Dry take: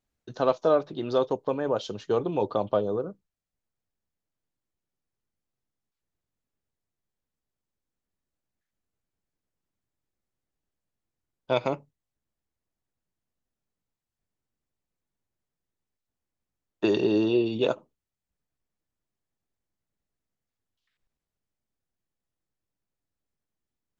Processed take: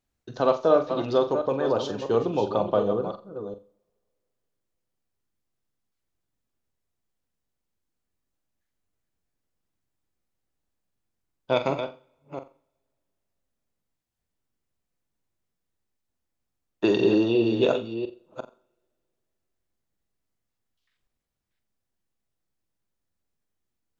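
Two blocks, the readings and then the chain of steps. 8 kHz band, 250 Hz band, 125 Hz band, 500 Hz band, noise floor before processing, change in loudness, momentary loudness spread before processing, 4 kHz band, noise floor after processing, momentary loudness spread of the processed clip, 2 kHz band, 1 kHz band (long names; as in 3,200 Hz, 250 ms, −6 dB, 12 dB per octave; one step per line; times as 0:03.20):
can't be measured, +3.0 dB, +2.5 dB, +3.0 dB, below −85 dBFS, +2.5 dB, 8 LU, +2.5 dB, −82 dBFS, 20 LU, +3.0 dB, +3.0 dB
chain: delay that plays each chunk backwards 354 ms, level −8 dB
on a send: flutter between parallel walls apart 7.5 metres, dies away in 0.26 s
on the sum: coupled-rooms reverb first 0.59 s, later 2.6 s, from −26 dB, DRR 17 dB
level +1.5 dB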